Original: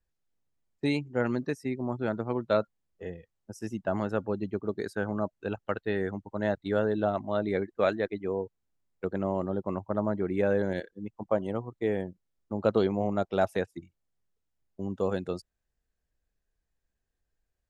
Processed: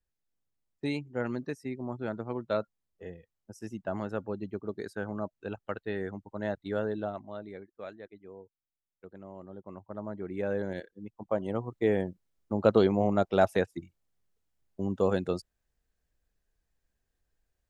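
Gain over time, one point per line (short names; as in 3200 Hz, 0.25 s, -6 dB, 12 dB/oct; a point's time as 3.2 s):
6.9 s -4.5 dB
7.66 s -17 dB
9.26 s -17 dB
10.56 s -5 dB
11.19 s -5 dB
11.72 s +2.5 dB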